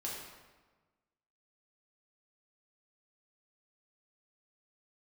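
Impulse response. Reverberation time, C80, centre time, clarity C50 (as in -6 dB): 1.3 s, 3.0 dB, 71 ms, 1.0 dB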